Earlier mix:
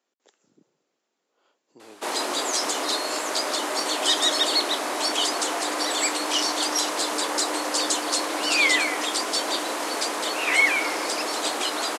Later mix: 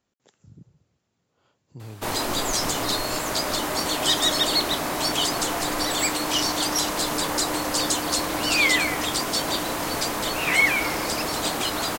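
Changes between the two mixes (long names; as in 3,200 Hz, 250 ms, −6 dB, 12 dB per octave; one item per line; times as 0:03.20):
background: remove low-pass filter 11,000 Hz 24 dB per octave
master: remove high-pass filter 300 Hz 24 dB per octave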